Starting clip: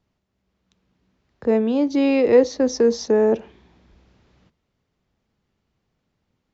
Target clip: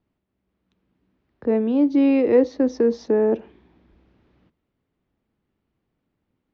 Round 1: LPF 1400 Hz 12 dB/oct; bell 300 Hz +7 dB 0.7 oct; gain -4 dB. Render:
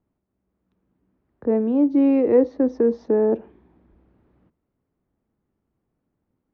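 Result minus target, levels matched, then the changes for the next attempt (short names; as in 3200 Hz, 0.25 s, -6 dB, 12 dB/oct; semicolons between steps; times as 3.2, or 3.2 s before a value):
4000 Hz band -12.5 dB
change: LPF 3200 Hz 12 dB/oct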